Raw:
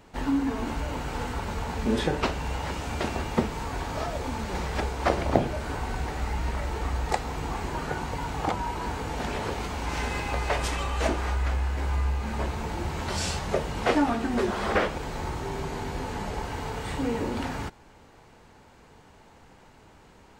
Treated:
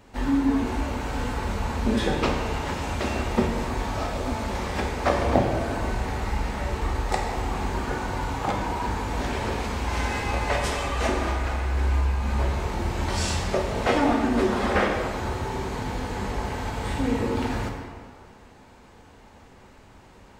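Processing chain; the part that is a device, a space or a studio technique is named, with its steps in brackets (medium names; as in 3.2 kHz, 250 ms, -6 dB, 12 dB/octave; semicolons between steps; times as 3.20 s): stairwell (reverberation RT60 1.8 s, pre-delay 3 ms, DRR 0.5 dB)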